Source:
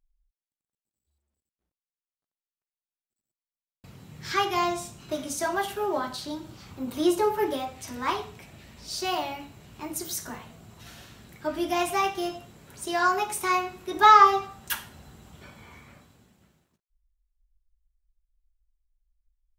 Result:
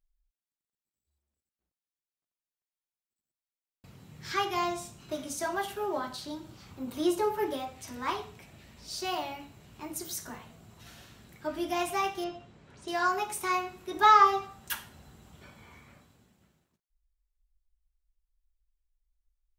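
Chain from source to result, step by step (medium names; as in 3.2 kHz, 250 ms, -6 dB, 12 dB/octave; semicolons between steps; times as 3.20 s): 12.24–12.88 s: distance through air 120 m; trim -4.5 dB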